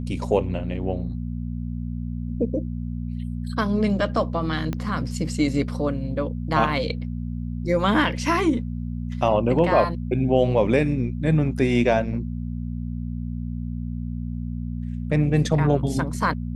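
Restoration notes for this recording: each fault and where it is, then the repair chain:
hum 60 Hz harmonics 4 -29 dBFS
4.73 s: pop -15 dBFS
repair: de-click; de-hum 60 Hz, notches 4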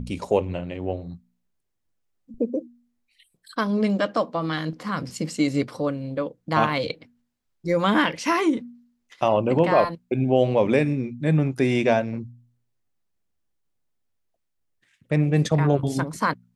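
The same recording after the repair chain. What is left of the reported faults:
4.73 s: pop

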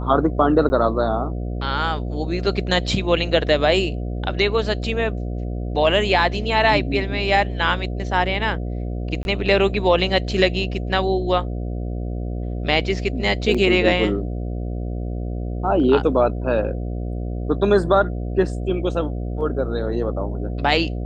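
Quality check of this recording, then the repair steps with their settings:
buzz 60 Hz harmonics 12 -26 dBFS
0.69–0.70 s: dropout 10 ms
9.23–9.25 s: dropout 21 ms
13.54–13.55 s: dropout 5.5 ms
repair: de-hum 60 Hz, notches 12; interpolate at 0.69 s, 10 ms; interpolate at 9.23 s, 21 ms; interpolate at 13.54 s, 5.5 ms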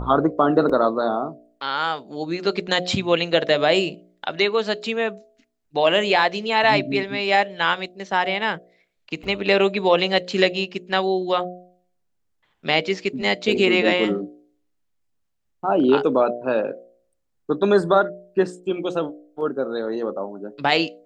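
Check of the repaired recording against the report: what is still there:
nothing left

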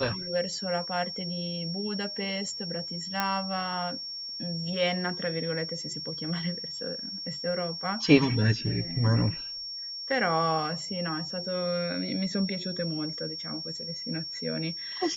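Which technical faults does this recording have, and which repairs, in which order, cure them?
whine 5.5 kHz -35 dBFS
3.20 s: pop -11 dBFS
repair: de-click; band-stop 5.5 kHz, Q 30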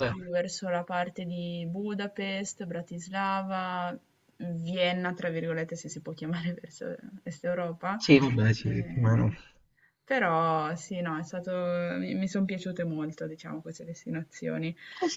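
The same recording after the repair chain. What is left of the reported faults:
nothing left

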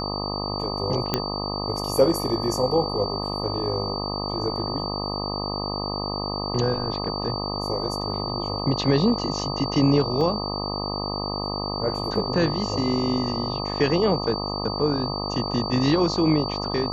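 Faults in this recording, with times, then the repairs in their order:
buzz 50 Hz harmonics 25 -30 dBFS
whine 4.6 kHz -31 dBFS
1.14 s: pop -6 dBFS
10.21 s: dropout 2.1 ms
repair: de-click; band-stop 4.6 kHz, Q 30; de-hum 50 Hz, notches 25; interpolate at 10.21 s, 2.1 ms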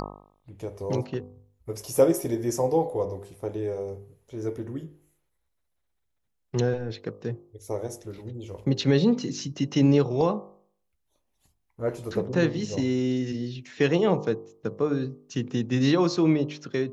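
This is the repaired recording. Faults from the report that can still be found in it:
nothing left

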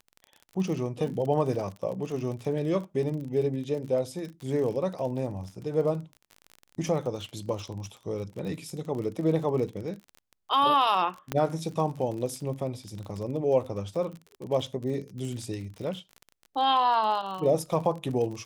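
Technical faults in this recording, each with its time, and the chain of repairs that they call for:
crackle 39 per s -35 dBFS
11.32 s: pop -13 dBFS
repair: de-click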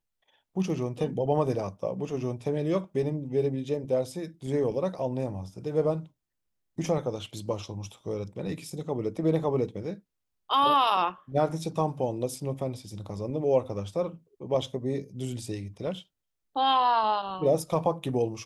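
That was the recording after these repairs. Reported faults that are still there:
nothing left

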